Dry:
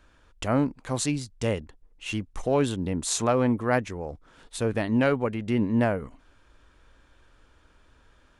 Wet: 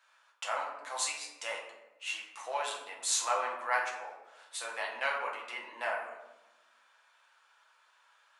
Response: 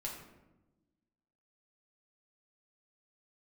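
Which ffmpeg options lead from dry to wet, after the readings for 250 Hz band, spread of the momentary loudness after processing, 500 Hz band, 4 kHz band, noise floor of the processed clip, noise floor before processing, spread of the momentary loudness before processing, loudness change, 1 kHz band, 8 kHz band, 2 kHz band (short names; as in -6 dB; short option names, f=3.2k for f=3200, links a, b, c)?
-36.5 dB, 13 LU, -13.0 dB, -1.5 dB, -67 dBFS, -60 dBFS, 12 LU, -8.5 dB, -2.0 dB, -1.5 dB, -0.5 dB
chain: -filter_complex "[0:a]highpass=f=800:w=0.5412,highpass=f=800:w=1.3066[a];[1:a]atrim=start_sample=2205[b];[a][b]afir=irnorm=-1:irlink=0"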